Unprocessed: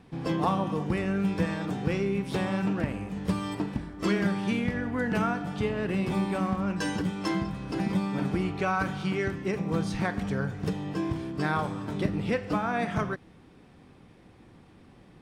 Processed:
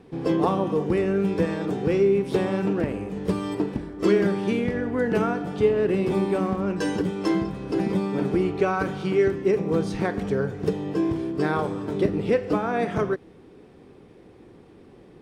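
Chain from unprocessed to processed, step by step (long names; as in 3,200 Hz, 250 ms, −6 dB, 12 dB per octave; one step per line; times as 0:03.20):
parametric band 410 Hz +12 dB 0.89 octaves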